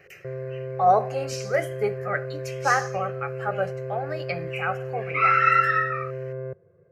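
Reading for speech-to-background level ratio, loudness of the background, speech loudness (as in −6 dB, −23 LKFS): 9.0 dB, −33.5 LKFS, −24.5 LKFS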